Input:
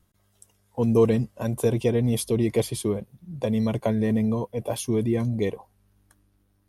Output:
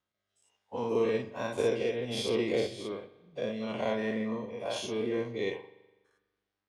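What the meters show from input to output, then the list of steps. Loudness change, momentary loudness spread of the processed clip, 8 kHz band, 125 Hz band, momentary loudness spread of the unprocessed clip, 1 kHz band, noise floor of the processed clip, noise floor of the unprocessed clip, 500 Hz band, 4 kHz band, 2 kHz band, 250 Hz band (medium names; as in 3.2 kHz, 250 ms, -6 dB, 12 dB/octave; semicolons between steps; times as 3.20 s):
-8.0 dB, 10 LU, -11.0 dB, -18.0 dB, 8 LU, -3.0 dB, under -85 dBFS, -67 dBFS, -5.5 dB, +0.5 dB, +1.0 dB, -11.0 dB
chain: every event in the spectrogram widened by 120 ms; high-pass 1.2 kHz 6 dB/octave; rotary cabinet horn 1.2 Hz; distance through air 140 m; spring tank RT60 1.2 s, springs 41 ms, chirp 25 ms, DRR 8.5 dB; upward expansion 1.5:1, over -47 dBFS; trim +2.5 dB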